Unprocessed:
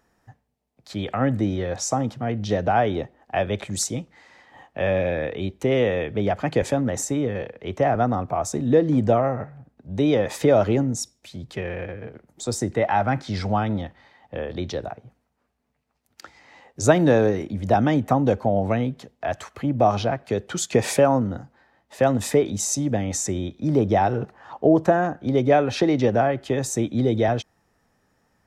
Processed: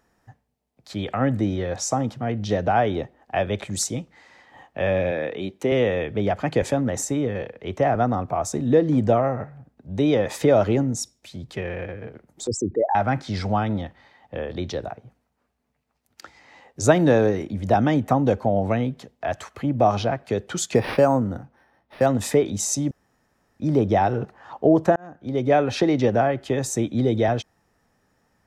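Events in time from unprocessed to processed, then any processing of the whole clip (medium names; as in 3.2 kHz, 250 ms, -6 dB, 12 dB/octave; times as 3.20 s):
5.11–5.72 s: high-pass 170 Hz
12.47–12.95 s: resonances exaggerated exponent 3
20.75–22.06 s: decimation joined by straight lines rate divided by 6×
22.91–23.60 s: room tone
24.96–25.60 s: fade in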